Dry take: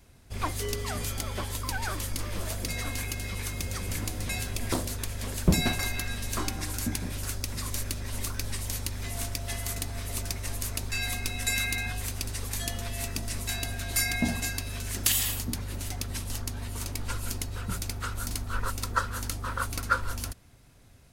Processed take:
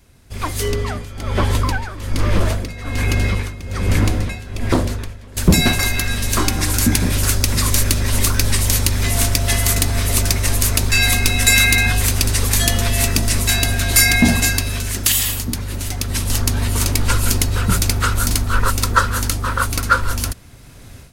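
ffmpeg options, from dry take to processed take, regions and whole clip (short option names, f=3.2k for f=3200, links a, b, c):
-filter_complex "[0:a]asettb=1/sr,asplit=3[a][b][c];[a]atrim=end=0.684[d];[b]atrim=start=0.68:end=5.37,asetpts=PTS-STARTPTS,afade=t=in:d=0.004:c=qsin,afade=t=out:st=4.686:d=0.004:c=qsin,lowpass=f=1.8k:p=1,tremolo=f=1.2:d=0.86[e];[c]atrim=start=5.366[f];[d][e]acrossfade=d=0.004:c1=hsin:c2=qsin[g];[g][f]acrossfade=d=0.004:c1=qsin:c2=hsin,dynaudnorm=f=500:g=3:m=15dB,equalizer=f=740:t=o:w=0.65:g=-2.5,acontrast=45,volume=-1dB"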